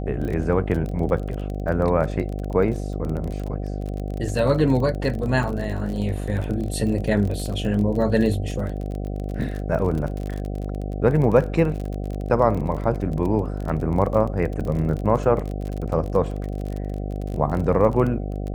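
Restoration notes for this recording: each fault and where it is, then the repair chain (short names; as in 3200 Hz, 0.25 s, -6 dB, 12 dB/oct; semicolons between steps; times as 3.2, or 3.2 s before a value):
buzz 50 Hz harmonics 15 -28 dBFS
crackle 31/s -28 dBFS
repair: de-click; de-hum 50 Hz, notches 15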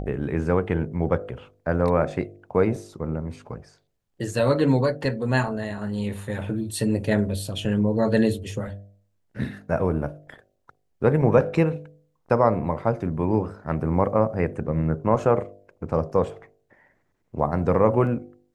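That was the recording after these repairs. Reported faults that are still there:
none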